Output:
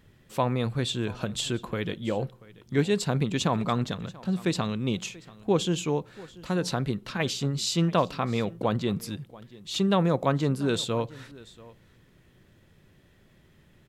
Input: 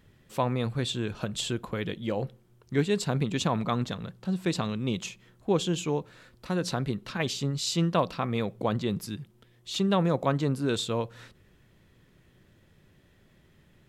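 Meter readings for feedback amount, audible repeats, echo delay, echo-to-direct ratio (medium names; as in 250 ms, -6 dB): no regular repeats, 1, 685 ms, -21.0 dB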